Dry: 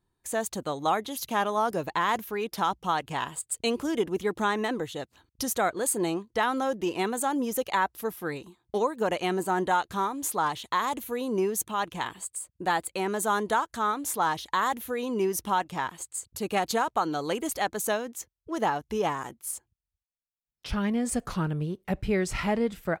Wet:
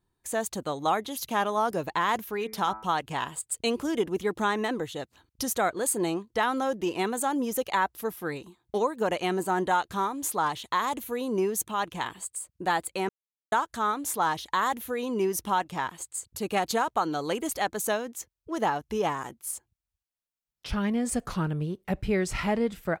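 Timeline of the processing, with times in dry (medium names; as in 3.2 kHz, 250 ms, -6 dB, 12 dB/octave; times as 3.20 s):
2.36–2.85 s: de-hum 108.8 Hz, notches 22
13.09–13.52 s: mute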